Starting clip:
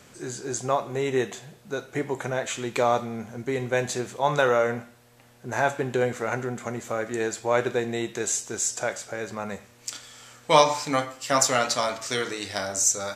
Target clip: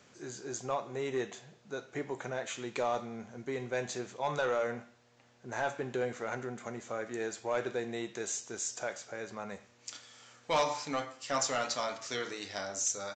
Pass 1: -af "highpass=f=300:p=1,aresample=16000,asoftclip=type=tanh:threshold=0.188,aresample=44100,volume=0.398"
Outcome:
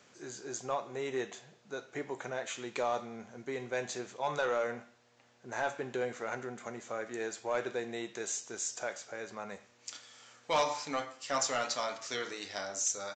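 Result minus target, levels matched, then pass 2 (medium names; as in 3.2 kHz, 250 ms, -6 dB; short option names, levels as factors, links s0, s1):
125 Hz band -4.0 dB
-af "highpass=f=130:p=1,aresample=16000,asoftclip=type=tanh:threshold=0.188,aresample=44100,volume=0.398"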